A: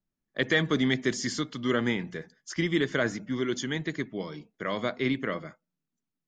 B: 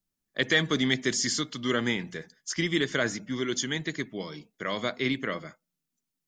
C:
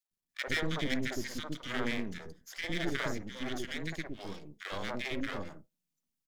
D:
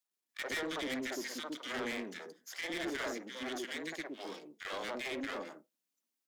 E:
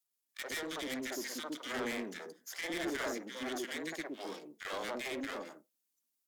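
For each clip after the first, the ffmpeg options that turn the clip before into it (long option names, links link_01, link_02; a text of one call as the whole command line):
ffmpeg -i in.wav -af "highshelf=frequency=3000:gain=10.5,volume=-1.5dB" out.wav
ffmpeg -i in.wav -filter_complex "[0:a]acrossover=split=2700[link_01][link_02];[link_02]acompressor=threshold=-41dB:ratio=4:attack=1:release=60[link_03];[link_01][link_03]amix=inputs=2:normalize=0,aeval=exprs='max(val(0),0)':channel_layout=same,acrossover=split=460|1400[link_04][link_05][link_06];[link_05]adelay=50[link_07];[link_04]adelay=110[link_08];[link_08][link_07][link_06]amix=inputs=3:normalize=0,volume=-1dB" out.wav
ffmpeg -i in.wav -af "highpass=frequency=270:width=0.5412,highpass=frequency=270:width=1.3066,asoftclip=type=tanh:threshold=-33.5dB,volume=1.5dB" out.wav
ffmpeg -i in.wav -filter_complex "[0:a]acrossover=split=2200[link_01][link_02];[link_01]dynaudnorm=framelen=210:gausssize=11:maxgain=5dB[link_03];[link_02]aemphasis=mode=production:type=cd[link_04];[link_03][link_04]amix=inputs=2:normalize=0,volume=-3.5dB" out.wav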